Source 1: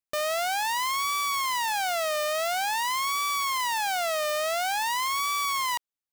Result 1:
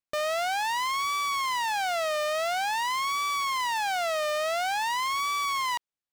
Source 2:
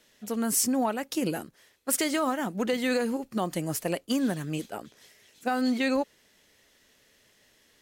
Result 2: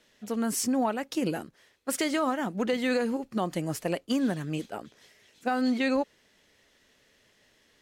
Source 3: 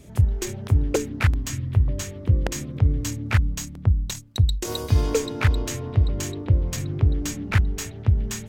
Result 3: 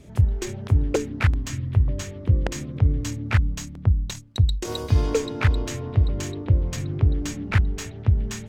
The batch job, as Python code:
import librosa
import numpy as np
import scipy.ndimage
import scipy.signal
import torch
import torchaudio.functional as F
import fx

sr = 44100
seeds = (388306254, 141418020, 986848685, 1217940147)

y = fx.high_shelf(x, sr, hz=8600.0, db=-11.5)